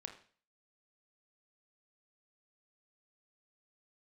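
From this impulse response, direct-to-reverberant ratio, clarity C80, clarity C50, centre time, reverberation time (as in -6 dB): 4.5 dB, 13.5 dB, 10.0 dB, 15 ms, 0.45 s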